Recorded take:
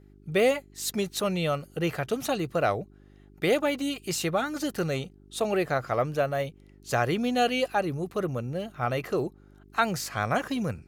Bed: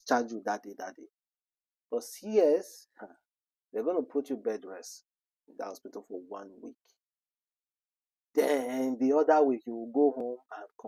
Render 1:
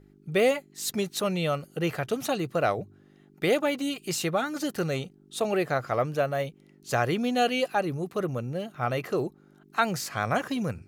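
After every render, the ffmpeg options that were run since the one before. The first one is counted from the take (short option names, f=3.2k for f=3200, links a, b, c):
-af "bandreject=f=50:t=h:w=4,bandreject=f=100:t=h:w=4"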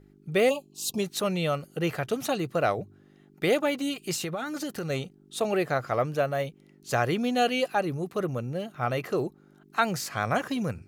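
-filter_complex "[0:a]asplit=3[a][b][c];[a]afade=t=out:st=0.49:d=0.02[d];[b]asuperstop=centerf=1700:order=20:qfactor=1.3,afade=t=in:st=0.49:d=0.02,afade=t=out:st=0.98:d=0.02[e];[c]afade=t=in:st=0.98:d=0.02[f];[d][e][f]amix=inputs=3:normalize=0,asettb=1/sr,asplit=3[g][h][i];[g]atrim=end=4.154[j];[h]atrim=start=4.15:end=4.9,asetpts=PTS-STARTPTS,afade=t=in:d=0.004:c=qsin,afade=t=out:st=0.746:d=0.004:c=qsin,acompressor=threshold=-28dB:ratio=6:attack=3.2:release=140:knee=1:detection=peak[k];[i]atrim=start=4.896[l];[j][k]acrossfade=d=0.004:c1=hsin:c2=qsin[m];[m][l]acrossfade=d=0.004:c1=qsin:c2=hsin"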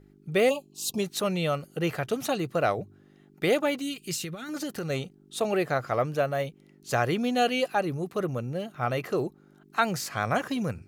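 -filter_complex "[0:a]asettb=1/sr,asplit=3[a][b][c];[a]atrim=end=3.804[d];[b]atrim=start=3.8:end=4.49,asetpts=PTS-STARTPTS,afade=t=in:d=0.004:c=qsin,afade=t=out:st=0.686:d=0.004:c=qsin,equalizer=f=780:w=0.85:g=-13[e];[c]atrim=start=4.486[f];[d][e]acrossfade=d=0.004:c1=hsin:c2=qsin[g];[g][f]acrossfade=d=0.004:c1=qsin:c2=hsin"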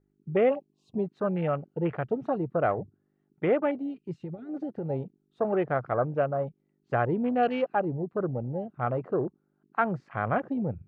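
-af "afwtdn=0.02,lowpass=1.6k"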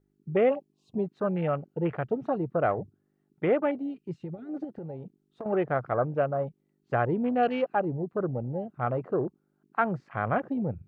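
-filter_complex "[0:a]asettb=1/sr,asplit=3[a][b][c];[a]atrim=end=4.644[d];[b]atrim=start=4.64:end=5.46,asetpts=PTS-STARTPTS,afade=t=in:d=0.004:c=qsin,afade=t=out:st=0.816:d=0.004:c=qsin,acompressor=threshold=-34dB:ratio=10:attack=3.2:release=140:knee=1:detection=peak[e];[c]atrim=start=5.456[f];[d][e]acrossfade=d=0.004:c1=hsin:c2=qsin[g];[g][f]acrossfade=d=0.004:c1=qsin:c2=hsin"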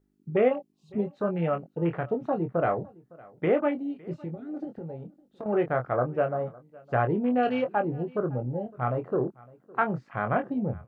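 -filter_complex "[0:a]asplit=2[a][b];[b]adelay=24,volume=-7dB[c];[a][c]amix=inputs=2:normalize=0,aecho=1:1:559:0.0668"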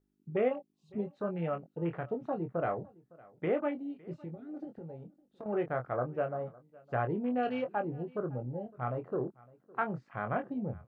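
-af "volume=-7dB"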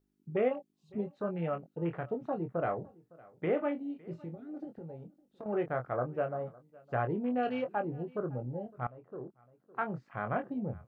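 -filter_complex "[0:a]asettb=1/sr,asplit=3[a][b][c];[a]atrim=end=2.804[d];[b]atrim=start=2.8:end=4.34,asetpts=PTS-STARTPTS,afade=t=in:d=0.004:c=qsin,afade=t=out:st=1.536:d=0.004:c=qsin,asplit=2[e][f];[f]adelay=42,volume=-13.5dB[g];[e][g]amix=inputs=2:normalize=0,atrim=end_sample=67914[h];[c]atrim=start=4.336[i];[d][h]acrossfade=d=0.004:c1=hsin:c2=qsin[j];[j][i]acrossfade=d=0.004:c1=qsin:c2=hsin,asplit=2[k][l];[k]atrim=end=8.87,asetpts=PTS-STARTPTS,afade=t=out:st=8.866:d=0.004:c=hsin:silence=0.1[m];[l]atrim=start=8.87,asetpts=PTS-STARTPTS,afade=t=in:d=1.18:silence=0.1[n];[m][n]concat=n=2:v=0:a=1"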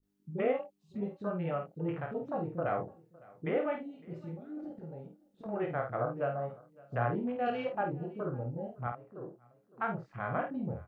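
-filter_complex "[0:a]asplit=2[a][b];[b]adelay=50,volume=-6dB[c];[a][c]amix=inputs=2:normalize=0,acrossover=split=330[d][e];[e]adelay=30[f];[d][f]amix=inputs=2:normalize=0"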